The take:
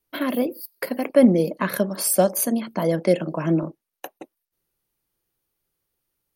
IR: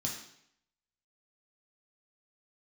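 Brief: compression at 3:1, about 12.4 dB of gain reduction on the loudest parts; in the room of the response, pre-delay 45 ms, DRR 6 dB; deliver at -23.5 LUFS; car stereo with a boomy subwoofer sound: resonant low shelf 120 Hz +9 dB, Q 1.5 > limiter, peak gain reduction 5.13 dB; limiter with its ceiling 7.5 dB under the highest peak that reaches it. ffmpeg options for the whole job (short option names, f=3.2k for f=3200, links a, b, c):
-filter_complex "[0:a]acompressor=threshold=-27dB:ratio=3,alimiter=limit=-20dB:level=0:latency=1,asplit=2[a][b];[1:a]atrim=start_sample=2205,adelay=45[c];[b][c]afir=irnorm=-1:irlink=0,volume=-8dB[d];[a][d]amix=inputs=2:normalize=0,lowshelf=f=120:t=q:w=1.5:g=9,volume=9dB,alimiter=limit=-13dB:level=0:latency=1"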